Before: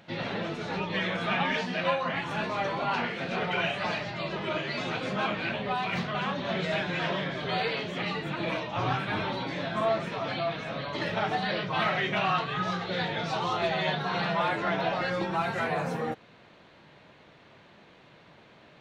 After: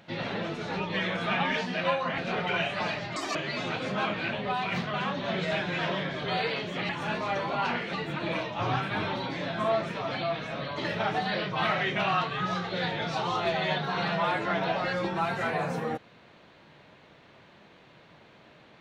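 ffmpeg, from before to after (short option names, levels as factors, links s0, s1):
-filter_complex "[0:a]asplit=6[s0][s1][s2][s3][s4][s5];[s0]atrim=end=2.182[s6];[s1]atrim=start=3.218:end=4.204[s7];[s2]atrim=start=4.2:end=4.56,asetpts=PTS-STARTPTS,asetrate=82908,aresample=44100[s8];[s3]atrim=start=4.556:end=8.102[s9];[s4]atrim=start=2.178:end=3.222[s10];[s5]atrim=start=8.098[s11];[s6][s7]acrossfade=d=0.004:c1=hsin:c2=hsin[s12];[s12][s8]acrossfade=d=0.004:c1=hsin:c2=hsin[s13];[s13][s9]acrossfade=d=0.004:c1=hsin:c2=hsin[s14];[s14][s10]acrossfade=d=0.004:c1=hsin:c2=hsin[s15];[s15][s11]acrossfade=d=0.004:c1=hsin:c2=hsin"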